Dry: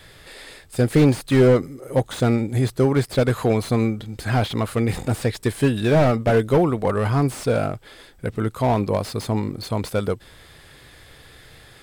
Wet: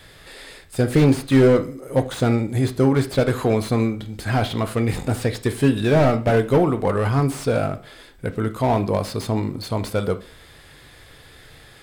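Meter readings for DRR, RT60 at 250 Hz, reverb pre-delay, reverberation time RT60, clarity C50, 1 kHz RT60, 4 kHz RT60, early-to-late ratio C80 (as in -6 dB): 8.5 dB, 0.40 s, 10 ms, 0.40 s, 15.0 dB, 0.40 s, 0.35 s, 19.5 dB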